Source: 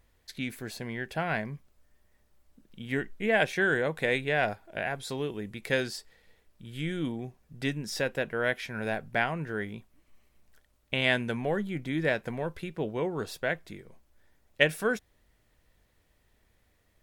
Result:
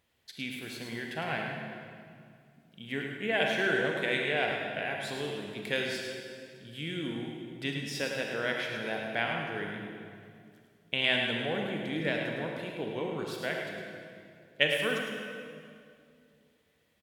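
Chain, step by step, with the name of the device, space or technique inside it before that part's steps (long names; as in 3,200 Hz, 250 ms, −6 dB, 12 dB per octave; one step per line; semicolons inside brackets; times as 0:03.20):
PA in a hall (high-pass filter 120 Hz; parametric band 3,100 Hz +7.5 dB 0.71 octaves; single-tap delay 106 ms −6.5 dB; convolution reverb RT60 2.3 s, pre-delay 33 ms, DRR 2 dB)
level −5.5 dB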